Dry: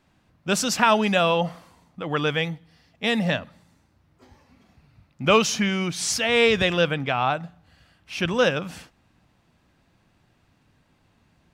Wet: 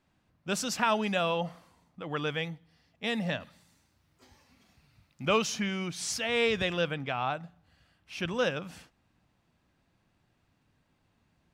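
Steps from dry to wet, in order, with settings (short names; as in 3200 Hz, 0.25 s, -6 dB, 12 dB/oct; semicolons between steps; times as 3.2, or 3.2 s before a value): 3.4–5.26 high shelf 2100 Hz +11.5 dB; gain -8.5 dB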